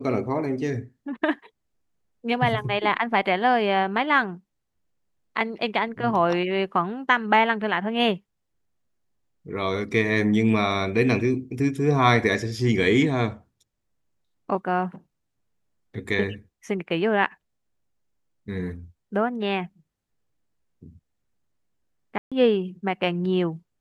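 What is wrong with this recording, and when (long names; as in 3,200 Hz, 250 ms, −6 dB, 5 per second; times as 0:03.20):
0:22.18–0:22.32: drop-out 136 ms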